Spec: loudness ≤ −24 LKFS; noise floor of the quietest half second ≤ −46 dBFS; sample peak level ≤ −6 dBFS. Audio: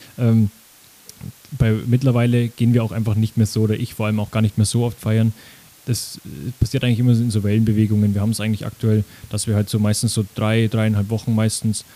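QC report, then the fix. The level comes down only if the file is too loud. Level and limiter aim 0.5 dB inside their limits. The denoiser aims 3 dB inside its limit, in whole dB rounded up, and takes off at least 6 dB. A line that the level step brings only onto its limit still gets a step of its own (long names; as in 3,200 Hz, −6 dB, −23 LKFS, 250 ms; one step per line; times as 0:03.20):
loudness −19.5 LKFS: out of spec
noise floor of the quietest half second −48 dBFS: in spec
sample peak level −4.5 dBFS: out of spec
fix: level −5 dB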